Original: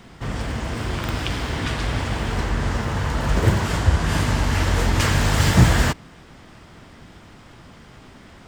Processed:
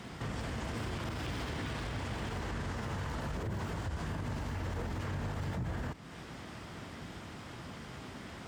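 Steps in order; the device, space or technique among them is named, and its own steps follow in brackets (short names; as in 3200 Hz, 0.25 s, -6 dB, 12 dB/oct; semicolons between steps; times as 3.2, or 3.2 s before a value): podcast mastering chain (HPF 62 Hz 12 dB/oct; de-esser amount 90%; compressor 2.5:1, threshold -33 dBFS, peak gain reduction 15.5 dB; limiter -29 dBFS, peak gain reduction 10.5 dB; MP3 96 kbps 44100 Hz)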